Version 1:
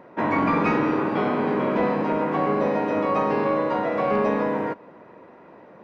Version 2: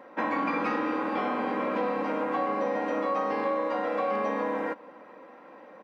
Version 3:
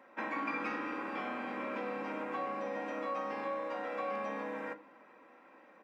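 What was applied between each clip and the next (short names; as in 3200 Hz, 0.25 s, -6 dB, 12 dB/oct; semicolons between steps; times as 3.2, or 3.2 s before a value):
HPF 520 Hz 6 dB/oct; comb 3.8 ms, depth 62%; compressor 2.5:1, threshold -27 dBFS, peak gain reduction 6 dB
reverb RT60 0.40 s, pre-delay 3 ms, DRR 11.5 dB; gain -6.5 dB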